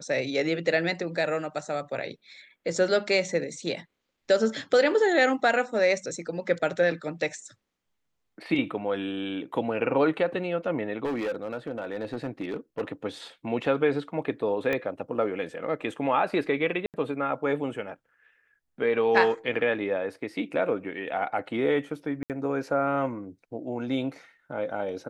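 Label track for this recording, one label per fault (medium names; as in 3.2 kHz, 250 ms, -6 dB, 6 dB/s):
11.040000	12.810000	clipped -26 dBFS
14.730000	14.730000	pop -16 dBFS
16.860000	16.940000	dropout 78 ms
22.230000	22.300000	dropout 68 ms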